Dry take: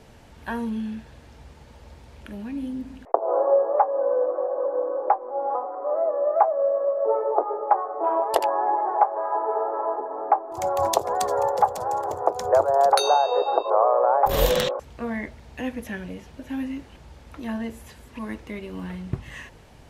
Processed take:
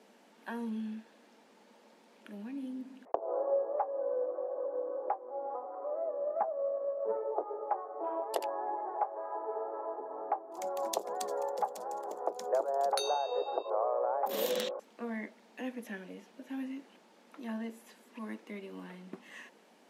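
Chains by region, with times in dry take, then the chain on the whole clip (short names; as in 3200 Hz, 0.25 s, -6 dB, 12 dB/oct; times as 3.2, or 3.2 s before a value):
6.14–7.17 bell 2100 Hz -10.5 dB 0.51 oct + Doppler distortion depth 0.11 ms
whole clip: elliptic high-pass 200 Hz, stop band 40 dB; dynamic EQ 1100 Hz, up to -6 dB, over -32 dBFS, Q 0.72; gain -8.5 dB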